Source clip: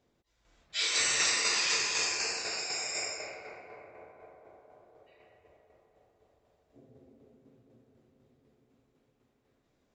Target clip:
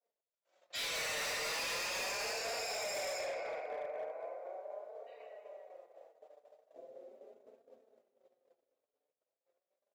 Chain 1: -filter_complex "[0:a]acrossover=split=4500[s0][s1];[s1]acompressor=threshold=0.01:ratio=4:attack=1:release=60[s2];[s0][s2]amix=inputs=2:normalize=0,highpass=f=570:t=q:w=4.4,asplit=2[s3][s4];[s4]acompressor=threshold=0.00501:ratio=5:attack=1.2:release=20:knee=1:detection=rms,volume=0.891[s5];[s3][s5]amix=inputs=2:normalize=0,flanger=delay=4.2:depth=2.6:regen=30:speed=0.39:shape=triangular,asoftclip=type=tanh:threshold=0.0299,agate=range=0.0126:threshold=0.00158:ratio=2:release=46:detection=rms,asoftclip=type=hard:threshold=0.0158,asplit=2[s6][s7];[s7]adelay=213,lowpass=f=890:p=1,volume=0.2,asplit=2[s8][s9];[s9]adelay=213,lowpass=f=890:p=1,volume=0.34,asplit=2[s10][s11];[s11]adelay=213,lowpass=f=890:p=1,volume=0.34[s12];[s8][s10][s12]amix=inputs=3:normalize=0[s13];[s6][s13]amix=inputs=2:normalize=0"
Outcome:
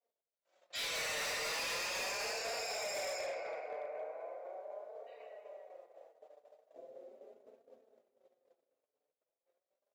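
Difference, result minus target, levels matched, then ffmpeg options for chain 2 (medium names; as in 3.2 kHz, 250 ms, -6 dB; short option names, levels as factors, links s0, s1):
compression: peak gain reduction +6 dB
-filter_complex "[0:a]acrossover=split=4500[s0][s1];[s1]acompressor=threshold=0.01:ratio=4:attack=1:release=60[s2];[s0][s2]amix=inputs=2:normalize=0,highpass=f=570:t=q:w=4.4,asplit=2[s3][s4];[s4]acompressor=threshold=0.0119:ratio=5:attack=1.2:release=20:knee=1:detection=rms,volume=0.891[s5];[s3][s5]amix=inputs=2:normalize=0,flanger=delay=4.2:depth=2.6:regen=30:speed=0.39:shape=triangular,asoftclip=type=tanh:threshold=0.0299,agate=range=0.0126:threshold=0.00158:ratio=2:release=46:detection=rms,asoftclip=type=hard:threshold=0.0158,asplit=2[s6][s7];[s7]adelay=213,lowpass=f=890:p=1,volume=0.2,asplit=2[s8][s9];[s9]adelay=213,lowpass=f=890:p=1,volume=0.34,asplit=2[s10][s11];[s11]adelay=213,lowpass=f=890:p=1,volume=0.34[s12];[s8][s10][s12]amix=inputs=3:normalize=0[s13];[s6][s13]amix=inputs=2:normalize=0"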